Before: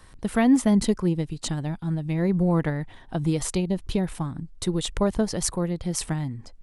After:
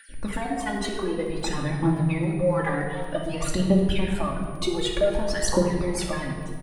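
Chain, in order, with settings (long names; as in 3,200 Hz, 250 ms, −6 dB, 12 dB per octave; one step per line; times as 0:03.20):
time-frequency cells dropped at random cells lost 21%
bass and treble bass −11 dB, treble −12 dB
brickwall limiter −23.5 dBFS, peak gain reduction 11 dB
downward compressor, threshold −33 dBFS, peak gain reduction 7 dB
phase shifter 0.54 Hz, delay 2.8 ms, feedback 73%
surface crackle 15 per second −45 dBFS
double-tracking delay 15 ms −10.5 dB
rectangular room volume 2,400 cubic metres, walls mixed, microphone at 2.4 metres
steady tone 9,600 Hz −58 dBFS
level +5 dB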